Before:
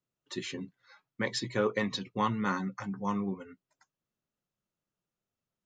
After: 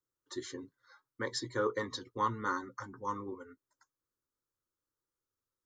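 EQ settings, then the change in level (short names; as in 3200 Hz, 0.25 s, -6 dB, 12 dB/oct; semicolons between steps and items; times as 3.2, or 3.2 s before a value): notch 410 Hz, Q 12; fixed phaser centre 690 Hz, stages 6; 0.0 dB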